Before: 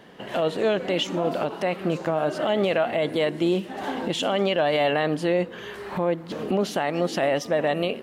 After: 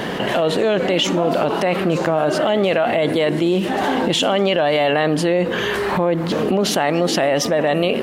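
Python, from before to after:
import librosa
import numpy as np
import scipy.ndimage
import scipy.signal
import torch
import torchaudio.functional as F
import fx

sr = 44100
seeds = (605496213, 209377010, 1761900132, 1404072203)

y = fx.env_flatten(x, sr, amount_pct=70)
y = y * librosa.db_to_amplitude(3.5)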